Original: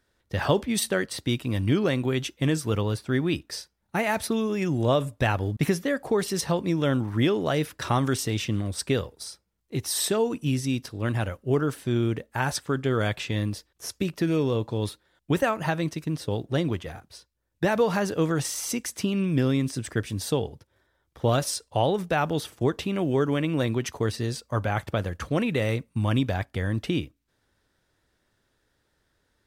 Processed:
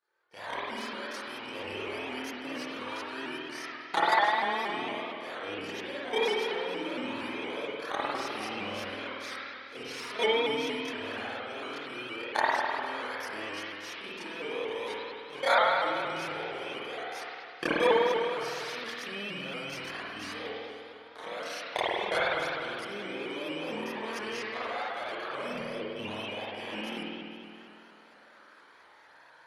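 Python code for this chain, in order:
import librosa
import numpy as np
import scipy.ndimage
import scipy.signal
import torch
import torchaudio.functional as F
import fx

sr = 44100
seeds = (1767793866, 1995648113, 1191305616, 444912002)

p1 = fx.bit_reversed(x, sr, seeds[0], block=16)
p2 = fx.recorder_agc(p1, sr, target_db=-11.0, rise_db_per_s=29.0, max_gain_db=30)
p3 = scipy.signal.sosfilt(scipy.signal.butter(2, 5100.0, 'lowpass', fs=sr, output='sos'), p2)
p4 = fx.dereverb_blind(p3, sr, rt60_s=0.73)
p5 = scipy.signal.sosfilt(scipy.signal.butter(2, 570.0, 'highpass', fs=sr, output='sos'), p4)
p6 = fx.peak_eq(p5, sr, hz=1600.0, db=6.5, octaves=2.4)
p7 = fx.level_steps(p6, sr, step_db=20)
p8 = fx.chorus_voices(p7, sr, voices=4, hz=0.15, base_ms=29, depth_ms=2.3, mix_pct=65)
p9 = p8 + fx.echo_single(p8, sr, ms=473, db=-21.0, dry=0)
p10 = fx.rev_spring(p9, sr, rt60_s=2.3, pass_ms=(50,), chirp_ms=50, drr_db=-7.5)
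p11 = fx.vibrato_shape(p10, sr, shape='saw_up', rate_hz=4.3, depth_cents=100.0)
y = p11 * 10.0 ** (-1.5 / 20.0)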